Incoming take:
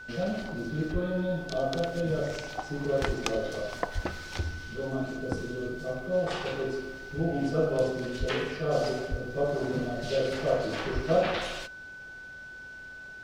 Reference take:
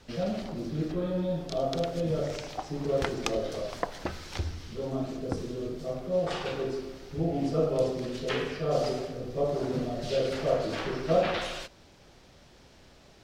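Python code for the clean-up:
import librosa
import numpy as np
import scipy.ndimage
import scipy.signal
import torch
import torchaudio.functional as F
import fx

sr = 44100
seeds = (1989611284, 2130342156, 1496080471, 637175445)

y = fx.notch(x, sr, hz=1500.0, q=30.0)
y = fx.fix_deplosive(y, sr, at_s=(0.92, 3.06, 3.94, 8.19, 9.1, 10.94))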